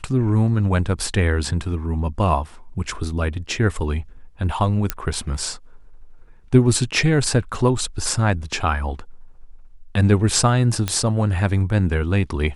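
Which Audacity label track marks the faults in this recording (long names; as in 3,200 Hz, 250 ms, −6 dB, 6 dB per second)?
4.900000	4.900000	click −5 dBFS
10.880000	10.880000	click −7 dBFS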